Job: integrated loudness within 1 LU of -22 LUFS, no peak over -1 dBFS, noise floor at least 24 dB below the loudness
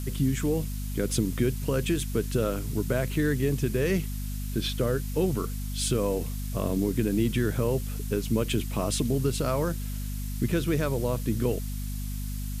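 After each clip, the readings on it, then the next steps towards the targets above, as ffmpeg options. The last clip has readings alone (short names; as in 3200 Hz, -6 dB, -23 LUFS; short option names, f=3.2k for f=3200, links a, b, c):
hum 50 Hz; harmonics up to 250 Hz; hum level -30 dBFS; noise floor -33 dBFS; noise floor target -53 dBFS; loudness -28.5 LUFS; peak -11.5 dBFS; loudness target -22.0 LUFS
-> -af "bandreject=f=50:t=h:w=4,bandreject=f=100:t=h:w=4,bandreject=f=150:t=h:w=4,bandreject=f=200:t=h:w=4,bandreject=f=250:t=h:w=4"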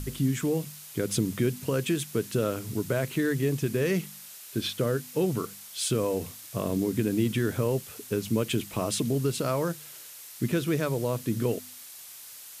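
hum none; noise floor -46 dBFS; noise floor target -53 dBFS
-> -af "afftdn=nr=7:nf=-46"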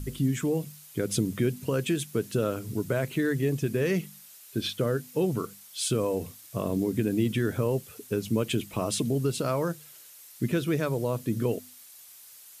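noise floor -50 dBFS; noise floor target -53 dBFS
-> -af "afftdn=nr=6:nf=-50"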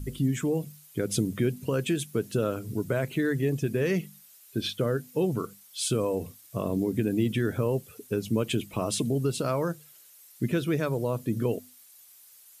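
noise floor -54 dBFS; loudness -29.0 LUFS; peak -13.0 dBFS; loudness target -22.0 LUFS
-> -af "volume=7dB"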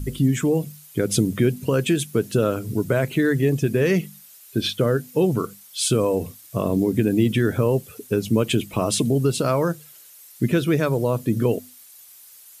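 loudness -22.0 LUFS; peak -6.0 dBFS; noise floor -47 dBFS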